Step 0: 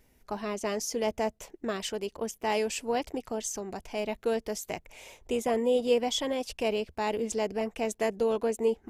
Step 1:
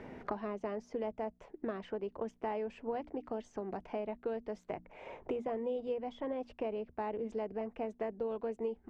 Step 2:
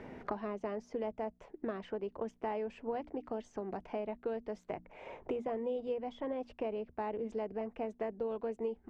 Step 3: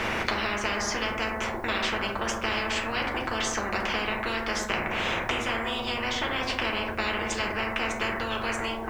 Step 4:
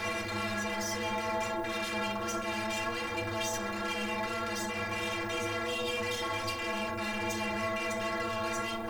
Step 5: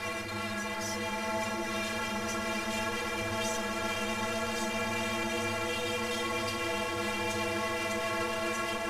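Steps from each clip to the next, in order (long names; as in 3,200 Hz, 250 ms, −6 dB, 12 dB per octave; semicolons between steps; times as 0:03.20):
low-pass filter 1,500 Hz 12 dB per octave; mains-hum notches 60/120/180/240/300 Hz; multiband upward and downward compressor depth 100%; level −8.5 dB
no processing that can be heard
convolution reverb RT60 0.65 s, pre-delay 5 ms, DRR −1.5 dB; every bin compressed towards the loudest bin 10 to 1; level +9 dB
brickwall limiter −21.5 dBFS, peak gain reduction 11 dB; leveller curve on the samples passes 3; stiff-string resonator 100 Hz, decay 0.43 s, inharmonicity 0.03; level +2.5 dB
variable-slope delta modulation 64 kbit/s; pitch vibrato 9.6 Hz 10 cents; echo that builds up and dies away 129 ms, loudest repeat 8, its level −12 dB; level −1.5 dB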